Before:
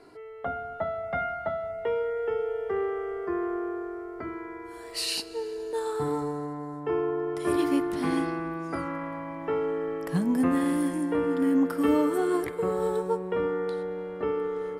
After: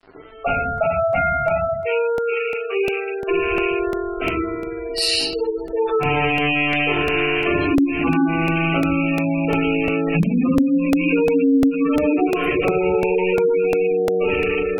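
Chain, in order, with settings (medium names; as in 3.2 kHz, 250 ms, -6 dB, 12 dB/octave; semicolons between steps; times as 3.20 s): rattle on loud lows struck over -40 dBFS, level -21 dBFS; 1.64–3.27 s: high-pass 1.3 kHz 6 dB/octave; simulated room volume 170 m³, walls mixed, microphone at 5.6 m; crossover distortion -38.5 dBFS; compression 5:1, threshold -15 dBFS, peak gain reduction 15 dB; spectral gate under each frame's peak -20 dB strong; 10.92–11.97 s: treble shelf 2.9 kHz +11.5 dB; crackling interface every 0.35 s, samples 64, repeat, from 0.78 s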